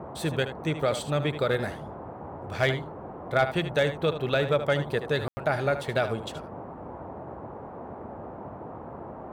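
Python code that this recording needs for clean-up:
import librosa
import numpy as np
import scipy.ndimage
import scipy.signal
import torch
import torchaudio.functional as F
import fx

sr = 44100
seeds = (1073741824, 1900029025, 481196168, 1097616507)

y = fx.fix_declip(x, sr, threshold_db=-14.0)
y = fx.fix_ambience(y, sr, seeds[0], print_start_s=7.47, print_end_s=7.97, start_s=5.28, end_s=5.37)
y = fx.noise_reduce(y, sr, print_start_s=7.47, print_end_s=7.97, reduce_db=30.0)
y = fx.fix_echo_inverse(y, sr, delay_ms=76, level_db=-11.0)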